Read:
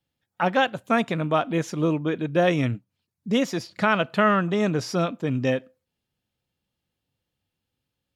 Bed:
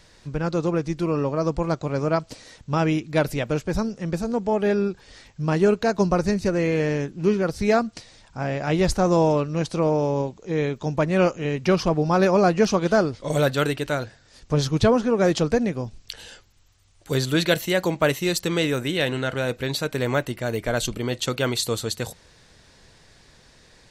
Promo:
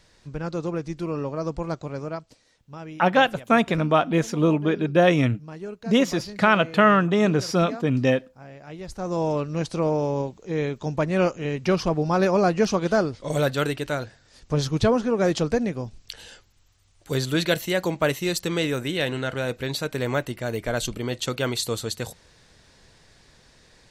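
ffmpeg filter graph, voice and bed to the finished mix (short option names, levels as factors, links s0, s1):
-filter_complex "[0:a]adelay=2600,volume=1.41[s0];[1:a]volume=3.16,afade=t=out:st=1.78:d=0.61:silence=0.251189,afade=t=in:st=8.87:d=0.64:silence=0.177828[s1];[s0][s1]amix=inputs=2:normalize=0"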